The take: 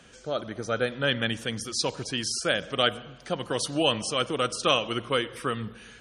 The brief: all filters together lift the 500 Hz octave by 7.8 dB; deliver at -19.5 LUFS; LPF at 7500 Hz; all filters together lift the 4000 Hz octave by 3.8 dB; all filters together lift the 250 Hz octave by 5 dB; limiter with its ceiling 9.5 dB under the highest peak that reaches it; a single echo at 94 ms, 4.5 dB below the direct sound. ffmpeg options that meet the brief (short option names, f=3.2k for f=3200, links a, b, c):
-af "lowpass=7.5k,equalizer=f=250:t=o:g=3.5,equalizer=f=500:t=o:g=8,equalizer=f=4k:t=o:g=5.5,alimiter=limit=-12.5dB:level=0:latency=1,aecho=1:1:94:0.596,volume=4.5dB"